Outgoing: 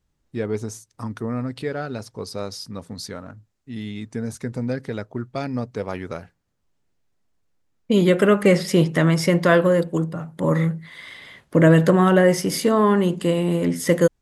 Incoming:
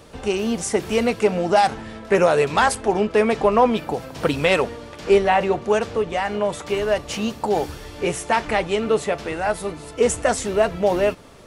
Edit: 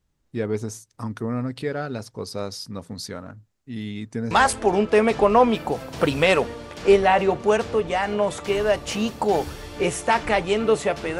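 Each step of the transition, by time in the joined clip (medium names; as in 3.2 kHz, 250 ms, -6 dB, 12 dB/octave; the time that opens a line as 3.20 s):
outgoing
4.31 s: go over to incoming from 2.53 s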